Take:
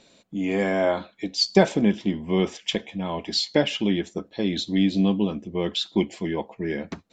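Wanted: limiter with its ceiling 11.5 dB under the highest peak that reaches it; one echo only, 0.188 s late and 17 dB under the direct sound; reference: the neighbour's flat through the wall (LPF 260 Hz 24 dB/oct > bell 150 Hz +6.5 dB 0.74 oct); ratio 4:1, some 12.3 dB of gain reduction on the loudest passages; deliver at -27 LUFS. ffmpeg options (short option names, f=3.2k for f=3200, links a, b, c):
-af "acompressor=threshold=-25dB:ratio=4,alimiter=limit=-22dB:level=0:latency=1,lowpass=f=260:w=0.5412,lowpass=f=260:w=1.3066,equalizer=f=150:t=o:w=0.74:g=6.5,aecho=1:1:188:0.141,volume=7.5dB"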